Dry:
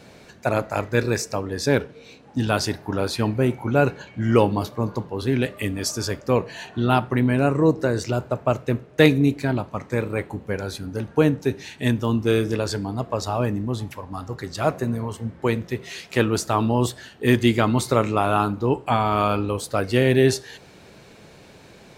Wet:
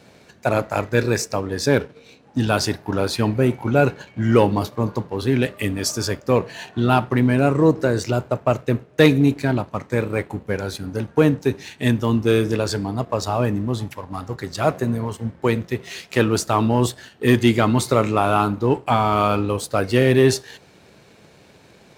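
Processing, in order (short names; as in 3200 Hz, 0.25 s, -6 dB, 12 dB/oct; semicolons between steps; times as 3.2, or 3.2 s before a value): sample leveller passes 1; HPF 51 Hz; gain -1 dB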